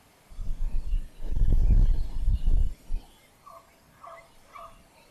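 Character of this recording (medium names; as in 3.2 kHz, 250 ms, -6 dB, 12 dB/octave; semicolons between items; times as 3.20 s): noise floor -59 dBFS; spectral tilt -8.0 dB/octave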